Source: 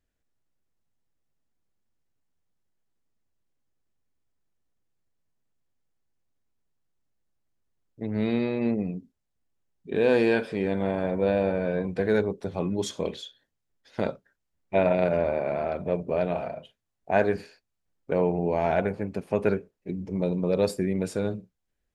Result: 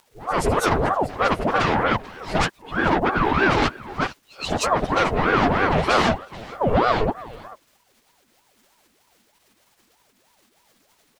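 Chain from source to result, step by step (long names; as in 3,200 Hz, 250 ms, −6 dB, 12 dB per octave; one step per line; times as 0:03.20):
played backwards from end to start
dynamic equaliser 1,700 Hz, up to +4 dB, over −51 dBFS, Q 6.4
in parallel at −3 dB: sine wavefolder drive 16 dB, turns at −7.5 dBFS
on the sum: surface crackle 200 per second −36 dBFS
echo ahead of the sound 243 ms −18.5 dB
time stretch by phase vocoder 0.51×
on a send: single-tap delay 437 ms −19 dB
on the sum: ring modulator whose carrier an LFO sweeps 600 Hz, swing 65%, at 3.2 Hz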